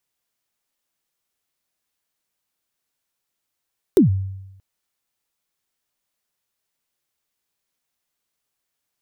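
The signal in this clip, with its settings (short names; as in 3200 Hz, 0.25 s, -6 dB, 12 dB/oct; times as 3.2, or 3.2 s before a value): kick drum length 0.63 s, from 430 Hz, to 96 Hz, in 0.123 s, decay 0.95 s, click on, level -7 dB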